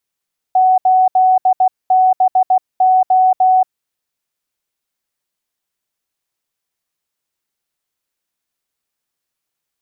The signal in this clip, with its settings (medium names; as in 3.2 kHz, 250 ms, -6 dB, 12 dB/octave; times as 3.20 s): Morse "8BO" 16 wpm 746 Hz -7.5 dBFS